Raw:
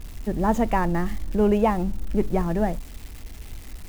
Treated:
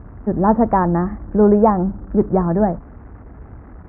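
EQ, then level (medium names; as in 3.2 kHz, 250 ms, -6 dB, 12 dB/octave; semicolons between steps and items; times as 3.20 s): high-pass 70 Hz 12 dB/octave; steep low-pass 1.5 kHz 36 dB/octave; +7.5 dB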